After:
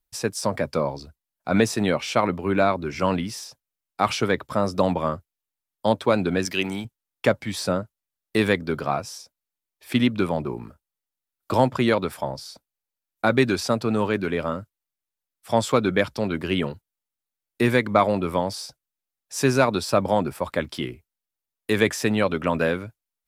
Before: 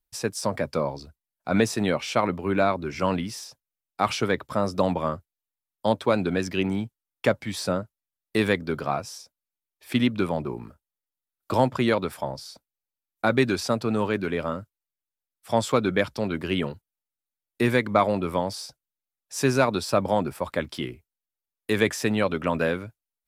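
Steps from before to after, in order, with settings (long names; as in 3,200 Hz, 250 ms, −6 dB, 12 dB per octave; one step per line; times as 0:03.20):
0:06.45–0:06.85: spectral tilt +2.5 dB per octave
level +2 dB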